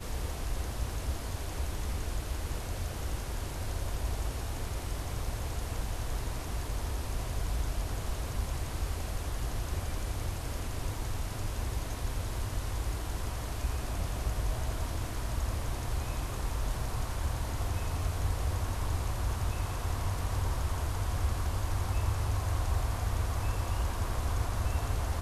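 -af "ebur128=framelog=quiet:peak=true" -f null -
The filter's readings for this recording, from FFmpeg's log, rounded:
Integrated loudness:
  I:         -35.2 LUFS
  Threshold: -45.2 LUFS
Loudness range:
  LRA:         4.0 LU
  Threshold: -55.3 LUFS
  LRA low:   -36.9 LUFS
  LRA high:  -32.9 LUFS
True peak:
  Peak:      -18.1 dBFS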